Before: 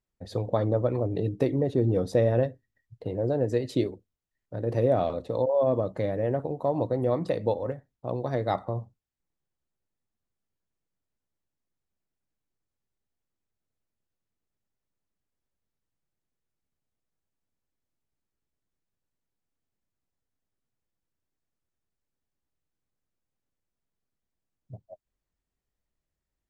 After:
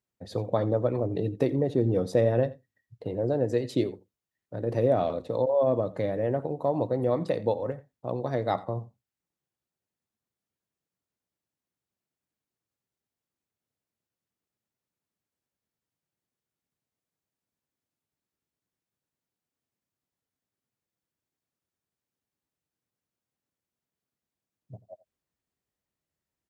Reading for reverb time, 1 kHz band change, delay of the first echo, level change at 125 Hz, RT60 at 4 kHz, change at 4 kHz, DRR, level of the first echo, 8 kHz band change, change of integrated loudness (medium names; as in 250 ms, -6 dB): no reverb, 0.0 dB, 86 ms, -1.5 dB, no reverb, 0.0 dB, no reverb, -19.5 dB, no reading, 0.0 dB